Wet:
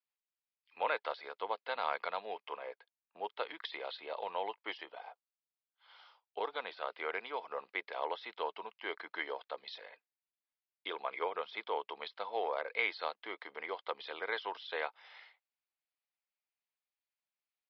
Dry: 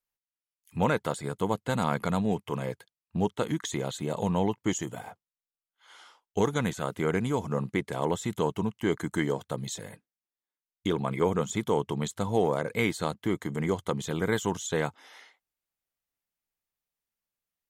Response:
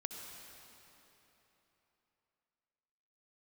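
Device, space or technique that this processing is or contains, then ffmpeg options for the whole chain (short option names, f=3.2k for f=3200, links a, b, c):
musical greeting card: -filter_complex "[0:a]asettb=1/sr,asplit=3[a][b][c];[a]atrim=end=2.564[d];[b]atrim=start=2.56:end=3.24,asetpts=PTS-STARTPTS,afade=t=in:d=0.004:c=qsin,afade=t=out:st=0.676:d=0.004:c=qsin,lowpass=f=1.6k:p=1[e];[c]atrim=start=3.236[f];[d][e]acrossfade=d=0.004:c1=hsin:c2=qsin[g];[g][f]acrossfade=d=0.004:c1=qsin:c2=hsin,asettb=1/sr,asplit=3[h][i][j];[h]atrim=end=4.914[k];[i]atrim=start=4.91:end=6.82,asetpts=PTS-STARTPTS,afade=t=in:d=0.004:c=qsin,afade=t=out:st=1.906:d=0.004:c=qsin,equalizer=f=2k:t=o:w=1:g=-5.5[l];[j]atrim=start=6.816[m];[k][l]acrossfade=d=0.004:c1=hsin:c2=qsin[n];[n][m]acrossfade=d=0.004:c1=qsin:c2=hsin,aresample=11025,aresample=44100,highpass=f=540:w=0.5412,highpass=f=540:w=1.3066,equalizer=f=2.4k:t=o:w=0.36:g=5,volume=-5dB"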